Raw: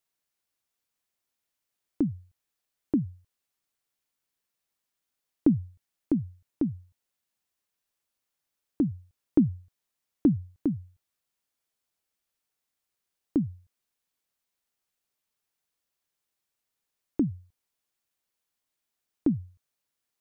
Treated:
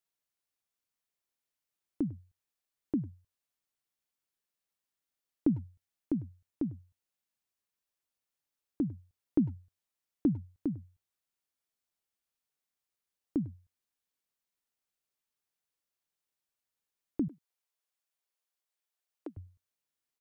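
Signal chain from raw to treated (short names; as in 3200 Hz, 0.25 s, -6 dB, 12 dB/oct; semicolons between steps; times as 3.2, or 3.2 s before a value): 17.28–19.37 HPF 430 Hz 24 dB/oct; speakerphone echo 0.1 s, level -19 dB; gain -6 dB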